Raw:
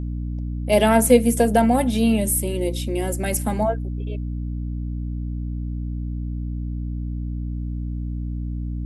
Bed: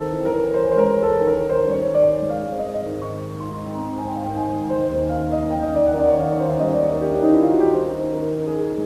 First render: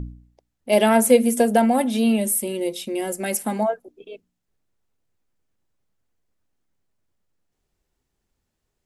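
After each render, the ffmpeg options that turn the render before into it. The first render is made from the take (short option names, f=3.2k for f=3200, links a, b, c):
-af "bandreject=f=60:t=h:w=4,bandreject=f=120:t=h:w=4,bandreject=f=180:t=h:w=4,bandreject=f=240:t=h:w=4,bandreject=f=300:t=h:w=4"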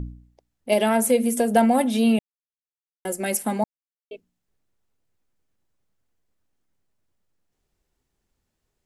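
-filter_complex "[0:a]asettb=1/sr,asplit=3[a][b][c];[a]atrim=end=0.734[d];[b]atrim=start=0.73:end=1.56,asetpts=PTS-STARTPTS,afade=t=in:d=0.004:c=qsin,afade=t=out:st=0.826:d=0.004:c=qsin,acompressor=threshold=-22dB:ratio=1.5:attack=3.2:release=140:knee=1:detection=peak[e];[c]atrim=start=1.556[f];[d][e]acrossfade=d=0.004:c1=hsin:c2=qsin[g];[g][f]acrossfade=d=0.004:c1=qsin:c2=hsin,asplit=5[h][i][j][k][l];[h]atrim=end=2.19,asetpts=PTS-STARTPTS,afade=t=out:st=2.186:d=0.004:c=hsin[m];[i]atrim=start=2.19:end=3.05,asetpts=PTS-STARTPTS,volume=0[n];[j]atrim=start=3.05:end=3.64,asetpts=PTS-STARTPTS,afade=t=in:d=0.004:c=hsin,afade=t=out:st=0.586:d=0.004:c=hsin[o];[k]atrim=start=3.64:end=4.11,asetpts=PTS-STARTPTS,volume=0[p];[l]atrim=start=4.11,asetpts=PTS-STARTPTS,afade=t=in:d=0.004:c=hsin[q];[m][n][o][p][q]concat=n=5:v=0:a=1"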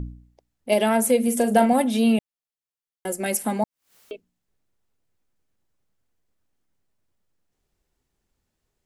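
-filter_complex "[0:a]asettb=1/sr,asplit=3[a][b][c];[a]atrim=end=1.244[d];[b]atrim=start=1.24:end=1.73,asetpts=PTS-STARTPTS,afade=t=in:d=0.004:c=qsin,afade=t=out:st=0.486:d=0.004:c=qsin,asplit=2[e][f];[f]adelay=38,volume=-9.5dB[g];[e][g]amix=inputs=2:normalize=0,atrim=end_sample=21609[h];[c]atrim=start=1.726[i];[d][h]acrossfade=d=0.004:c1=hsin:c2=qsin[j];[j][i]acrossfade=d=0.004:c1=qsin:c2=hsin,asettb=1/sr,asplit=3[k][l][m];[k]atrim=end=3.264[n];[l]atrim=start=3.26:end=4.13,asetpts=PTS-STARTPTS,afade=t=in:d=0.004:c=qsin,afade=t=out:st=0.866:d=0.004:c=qsin,acompressor=mode=upward:threshold=-26dB:ratio=2.5:attack=3.2:release=140:knee=2.83:detection=peak[o];[m]atrim=start=4.126[p];[n][o]acrossfade=d=0.004:c1=hsin:c2=qsin[q];[q][p]acrossfade=d=0.004:c1=qsin:c2=hsin"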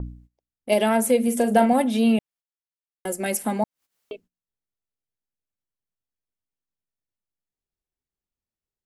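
-af "agate=range=-18dB:threshold=-49dB:ratio=16:detection=peak,adynamicequalizer=threshold=0.00891:dfrequency=4100:dqfactor=0.7:tfrequency=4100:tqfactor=0.7:attack=5:release=100:ratio=0.375:range=2:mode=cutabove:tftype=highshelf"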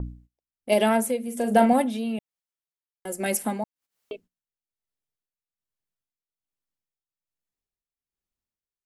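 -af "tremolo=f=1.2:d=0.71"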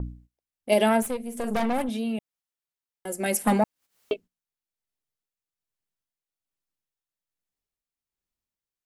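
-filter_complex "[0:a]asettb=1/sr,asplit=3[a][b][c];[a]atrim=end=1.024[d];[b]atrim=start=1.02:end=1.89,asetpts=PTS-STARTPTS,afade=t=in:d=0.004:c=qsin,afade=t=out:st=0.866:d=0.004:c=qsin,aeval=exprs='(tanh(14.1*val(0)+0.65)-tanh(0.65))/14.1':c=same[e];[c]atrim=start=1.886[f];[d][e]acrossfade=d=0.004:c1=hsin:c2=qsin[g];[g][f]acrossfade=d=0.004:c1=qsin:c2=hsin,asettb=1/sr,asplit=3[h][i][j];[h]atrim=end=3.474[k];[i]atrim=start=3.47:end=4.14,asetpts=PTS-STARTPTS,afade=t=in:d=0.004:c=qsin,afade=t=out:st=0.666:d=0.004:c=qsin,aeval=exprs='0.2*sin(PI/2*2*val(0)/0.2)':c=same[l];[j]atrim=start=4.136[m];[k][l]acrossfade=d=0.004:c1=hsin:c2=qsin[n];[n][m]acrossfade=d=0.004:c1=qsin:c2=hsin"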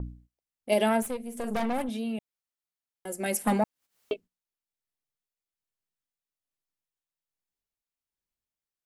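-af "volume=-3.5dB"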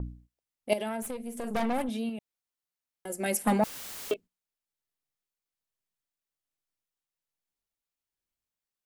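-filter_complex "[0:a]asettb=1/sr,asplit=3[a][b][c];[a]atrim=end=0.734[d];[b]atrim=start=0.73:end=1.55,asetpts=PTS-STARTPTS,afade=t=in:d=0.004:c=qsin,afade=t=out:st=0.816:d=0.004:c=qsin,acompressor=threshold=-30dB:ratio=6:attack=3.2:release=140:knee=1:detection=peak[e];[c]atrim=start=1.546[f];[d][e]acrossfade=d=0.004:c1=hsin:c2=qsin[g];[g][f]acrossfade=d=0.004:c1=qsin:c2=hsin,asettb=1/sr,asplit=3[h][i][j];[h]atrim=end=2.094[k];[i]atrim=start=2.09:end=3.1,asetpts=PTS-STARTPTS,afade=t=in:d=0.004:c=qsin,afade=t=out:st=1.006:d=0.004:c=qsin,acompressor=threshold=-35dB:ratio=2.5:attack=3.2:release=140:knee=1:detection=peak[l];[j]atrim=start=3.096[m];[k][l]acrossfade=d=0.004:c1=hsin:c2=qsin[n];[n][m]acrossfade=d=0.004:c1=qsin:c2=hsin,asettb=1/sr,asplit=3[o][p][q];[o]atrim=end=3.634[r];[p]atrim=start=3.63:end=4.14,asetpts=PTS-STARTPTS,afade=t=in:d=0.004:c=qsin,afade=t=out:st=0.506:d=0.004:c=qsin,aeval=exprs='val(0)+0.5*0.02*sgn(val(0))':c=same[s];[q]atrim=start=4.136[t];[r][s]acrossfade=d=0.004:c1=hsin:c2=qsin[u];[u][t]acrossfade=d=0.004:c1=qsin:c2=hsin"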